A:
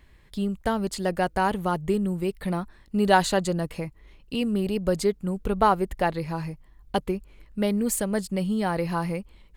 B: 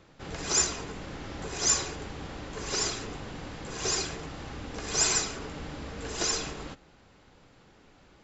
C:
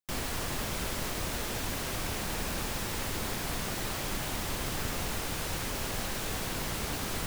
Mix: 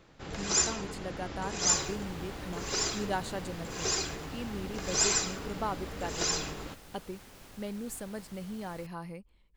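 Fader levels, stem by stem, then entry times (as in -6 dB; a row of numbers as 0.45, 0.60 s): -14.0, -1.5, -19.0 dB; 0.00, 0.00, 1.60 s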